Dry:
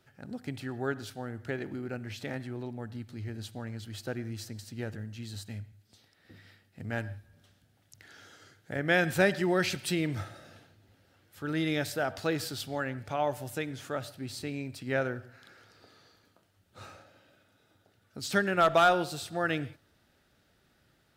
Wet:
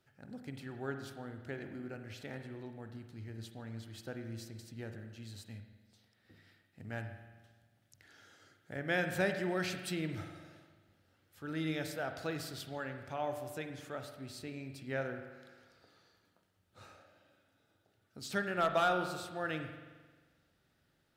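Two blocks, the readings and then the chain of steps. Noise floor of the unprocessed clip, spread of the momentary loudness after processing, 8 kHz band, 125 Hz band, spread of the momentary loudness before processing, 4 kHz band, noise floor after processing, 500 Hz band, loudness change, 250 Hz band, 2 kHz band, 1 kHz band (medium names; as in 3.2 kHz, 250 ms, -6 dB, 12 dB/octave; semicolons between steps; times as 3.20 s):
-69 dBFS, 18 LU, -8.0 dB, -7.0 dB, 17 LU, -7.5 dB, -75 dBFS, -7.0 dB, -7.0 dB, -7.0 dB, -7.0 dB, -7.0 dB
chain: spring tank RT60 1.4 s, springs 44 ms, chirp 40 ms, DRR 7 dB; trim -8 dB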